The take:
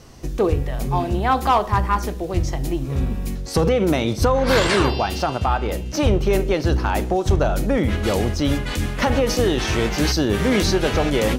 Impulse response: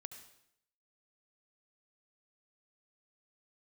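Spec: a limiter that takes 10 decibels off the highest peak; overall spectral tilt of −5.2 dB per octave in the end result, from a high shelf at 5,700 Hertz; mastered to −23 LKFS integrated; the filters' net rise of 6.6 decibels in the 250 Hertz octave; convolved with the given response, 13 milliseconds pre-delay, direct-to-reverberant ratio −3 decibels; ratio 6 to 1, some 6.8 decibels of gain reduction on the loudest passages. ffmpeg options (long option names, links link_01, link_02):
-filter_complex "[0:a]equalizer=frequency=250:width_type=o:gain=8.5,highshelf=frequency=5700:gain=9,acompressor=threshold=-17dB:ratio=6,alimiter=limit=-17.5dB:level=0:latency=1,asplit=2[link_01][link_02];[1:a]atrim=start_sample=2205,adelay=13[link_03];[link_02][link_03]afir=irnorm=-1:irlink=0,volume=8dB[link_04];[link_01][link_04]amix=inputs=2:normalize=0,volume=-1.5dB"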